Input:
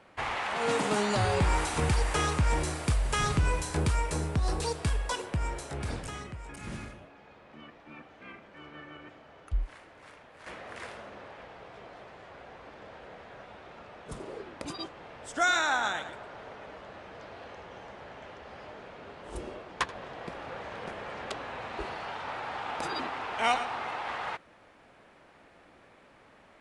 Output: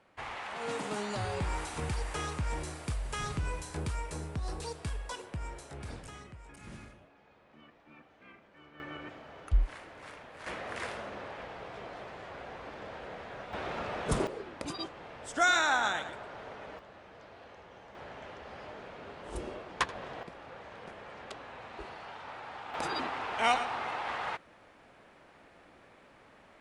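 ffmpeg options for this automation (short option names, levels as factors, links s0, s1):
-af "asetnsamples=n=441:p=0,asendcmd='8.8 volume volume 4dB;13.53 volume volume 11.5dB;14.27 volume volume 0dB;16.79 volume volume -6.5dB;17.95 volume volume 0dB;20.23 volume volume -7.5dB;22.74 volume volume -0.5dB',volume=0.398"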